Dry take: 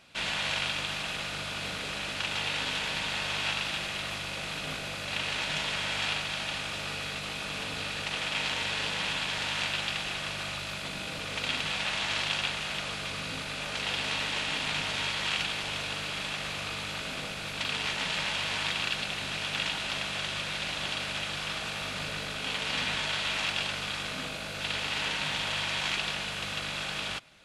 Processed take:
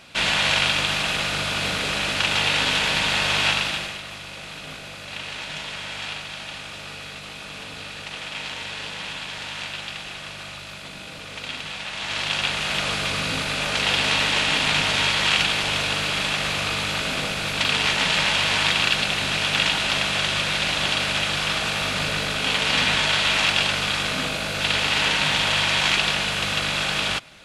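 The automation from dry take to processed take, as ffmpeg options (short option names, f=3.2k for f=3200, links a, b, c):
-af "volume=22dB,afade=t=out:st=3.46:d=0.55:silence=0.266073,afade=t=in:st=11.92:d=0.97:silence=0.266073"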